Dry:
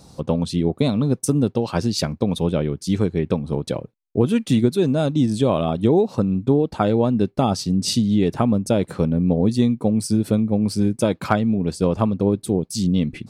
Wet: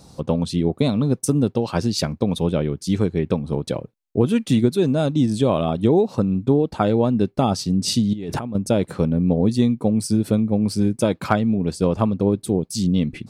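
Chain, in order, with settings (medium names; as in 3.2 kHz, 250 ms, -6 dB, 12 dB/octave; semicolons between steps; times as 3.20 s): 8.13–8.55 s: compressor with a negative ratio -28 dBFS, ratio -1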